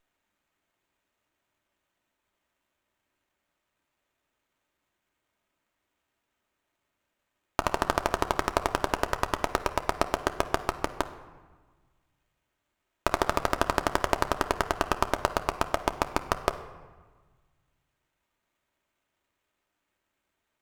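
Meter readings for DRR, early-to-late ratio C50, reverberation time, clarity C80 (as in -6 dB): 6.5 dB, 12.5 dB, 1.4 s, 14.5 dB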